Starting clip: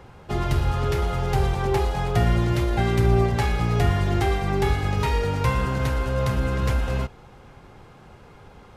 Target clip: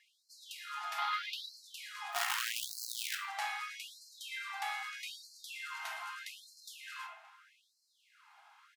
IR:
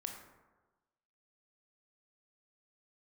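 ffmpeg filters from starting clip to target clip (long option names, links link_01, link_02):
-filter_complex "[0:a]asettb=1/sr,asplit=3[link_01][link_02][link_03];[link_01]atrim=end=0.984[link_04];[link_02]atrim=start=0.98:end=1.57,asetpts=PTS-STARTPTS,afade=type=in:duration=0.004:curve=qsin,afade=type=out:start_time=0.586:duration=0.004:curve=qsin,equalizer=frequency=1000:width_type=o:width=1:gain=8,equalizer=frequency=2000:width_type=o:width=1:gain=4,equalizer=frequency=4000:width_type=o:width=1:gain=12,equalizer=frequency=8000:width_type=o:width=1:gain=-11[link_05];[link_03]atrim=start=1.566[link_06];[link_04][link_05]acrossfade=duration=0.004:curve1=hsin:curve2=qsin[link_07];[link_07][link_06]acrossfade=duration=0.004:curve1=qsin:curve2=hsin,asplit=2[link_08][link_09];[link_09]adelay=575,lowpass=frequency=980:poles=1,volume=-15dB,asplit=2[link_10][link_11];[link_11]adelay=575,lowpass=frequency=980:poles=1,volume=0.53,asplit=2[link_12][link_13];[link_13]adelay=575,lowpass=frequency=980:poles=1,volume=0.53,asplit=2[link_14][link_15];[link_15]adelay=575,lowpass=frequency=980:poles=1,volume=0.53,asplit=2[link_16][link_17];[link_17]adelay=575,lowpass=frequency=980:poles=1,volume=0.53[link_18];[link_08][link_10][link_12][link_14][link_16][link_18]amix=inputs=6:normalize=0,asettb=1/sr,asplit=3[link_19][link_20][link_21];[link_19]atrim=end=2.124[link_22];[link_20]atrim=start=2.12:end=3.15,asetpts=PTS-STARTPTS,afade=type=in:duration=0.004:curve=qsin,afade=type=out:start_time=1.026:duration=0.004:curve=qsin,acrusher=bits=4:dc=4:mix=0:aa=0.000001[link_23];[link_21]atrim=start=3.146[link_24];[link_22][link_23]acrossfade=duration=0.004:curve1=hsin:curve2=qsin[link_25];[link_25][link_24]acrossfade=duration=0.004:curve1=qsin:curve2=hsin,lowshelf=frequency=380:gain=-11.5[link_26];[1:a]atrim=start_sample=2205,asetrate=70560,aresample=44100[link_27];[link_26][link_27]afir=irnorm=-1:irlink=0,afftfilt=real='re*gte(b*sr/1024,620*pow(4100/620,0.5+0.5*sin(2*PI*0.8*pts/sr)))':imag='im*gte(b*sr/1024,620*pow(4100/620,0.5+0.5*sin(2*PI*0.8*pts/sr)))':win_size=1024:overlap=0.75,volume=-1.5dB"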